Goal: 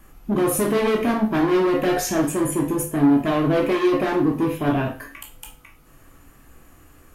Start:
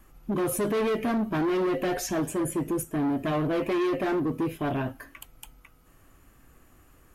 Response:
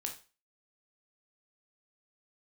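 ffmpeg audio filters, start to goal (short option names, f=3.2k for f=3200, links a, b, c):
-filter_complex "[1:a]atrim=start_sample=2205[a];[0:a][a]afir=irnorm=-1:irlink=0,volume=7.5dB"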